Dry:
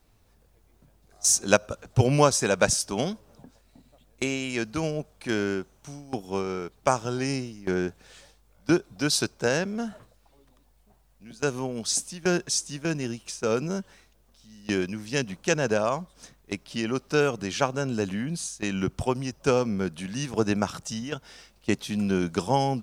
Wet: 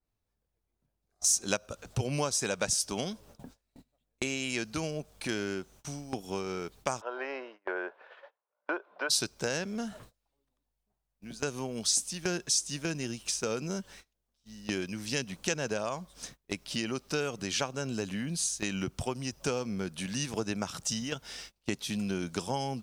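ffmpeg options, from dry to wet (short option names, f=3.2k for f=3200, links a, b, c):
-filter_complex "[0:a]asplit=3[a][b][c];[a]afade=t=out:st=7:d=0.02[d];[b]highpass=f=440:w=0.5412,highpass=f=440:w=1.3066,equalizer=f=590:t=q:w=4:g=7,equalizer=f=1k:t=q:w=4:g=9,equalizer=f=1.5k:t=q:w=4:g=4,equalizer=f=2.3k:t=q:w=4:g=-4,lowpass=f=2.4k:w=0.5412,lowpass=f=2.4k:w=1.3066,afade=t=in:st=7:d=0.02,afade=t=out:st=9.09:d=0.02[e];[c]afade=t=in:st=9.09:d=0.02[f];[d][e][f]amix=inputs=3:normalize=0,agate=range=-23dB:threshold=-52dB:ratio=16:detection=peak,acompressor=threshold=-36dB:ratio=2.5,adynamicequalizer=threshold=0.00224:dfrequency=2200:dqfactor=0.7:tfrequency=2200:tqfactor=0.7:attack=5:release=100:ratio=0.375:range=3:mode=boostabove:tftype=highshelf,volume=1.5dB"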